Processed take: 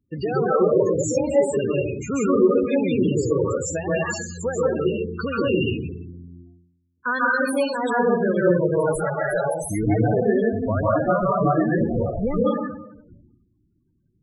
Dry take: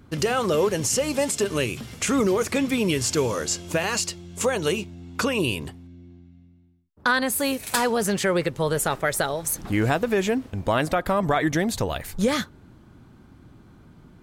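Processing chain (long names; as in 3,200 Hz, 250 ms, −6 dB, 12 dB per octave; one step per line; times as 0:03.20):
noise gate with hold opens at −38 dBFS
dense smooth reverb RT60 0.95 s, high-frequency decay 0.8×, pre-delay 120 ms, DRR −6 dB
spectral peaks only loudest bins 16
level −2.5 dB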